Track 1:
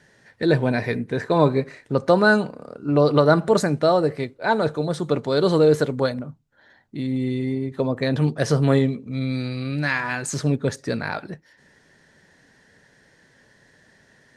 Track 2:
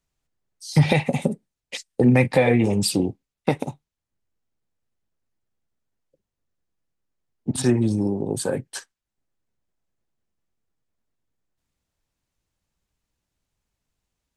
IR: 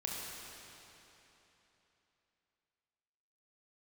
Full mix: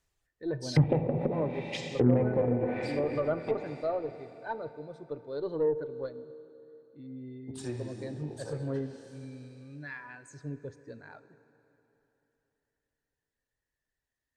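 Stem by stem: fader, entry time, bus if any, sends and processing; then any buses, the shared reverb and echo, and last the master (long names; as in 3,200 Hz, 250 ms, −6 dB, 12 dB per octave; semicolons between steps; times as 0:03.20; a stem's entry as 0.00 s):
−15.5 dB, 0.00 s, send −13 dB, every bin expanded away from the loudest bin 1.5 to 1
0:02.30 0 dB → 0:02.83 −12 dB, 0.00 s, send −6.5 dB, reverb reduction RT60 0.96 s; automatic ducking −13 dB, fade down 1.75 s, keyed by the first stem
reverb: on, RT60 3.4 s, pre-delay 24 ms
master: treble cut that deepens with the level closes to 520 Hz, closed at −20 dBFS; parametric band 190 Hz −11.5 dB 0.57 octaves; harmonic generator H 8 −31 dB, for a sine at −12 dBFS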